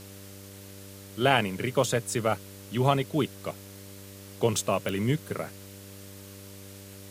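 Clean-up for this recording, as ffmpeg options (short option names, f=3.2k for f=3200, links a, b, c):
-af "adeclick=t=4,bandreject=f=98.1:t=h:w=4,bandreject=f=196.2:t=h:w=4,bandreject=f=294.3:t=h:w=4,bandreject=f=392.4:t=h:w=4,bandreject=f=490.5:t=h:w=4,bandreject=f=588.6:t=h:w=4,afwtdn=0.0035"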